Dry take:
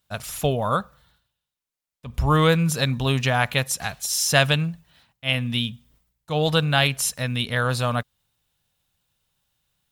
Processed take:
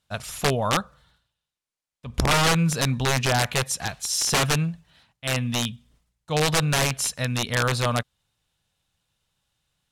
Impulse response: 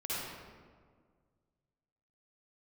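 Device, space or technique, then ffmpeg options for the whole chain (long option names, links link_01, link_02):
overflowing digital effects unit: -af "aeval=exprs='(mod(4.73*val(0)+1,2)-1)/4.73':channel_layout=same,lowpass=10000"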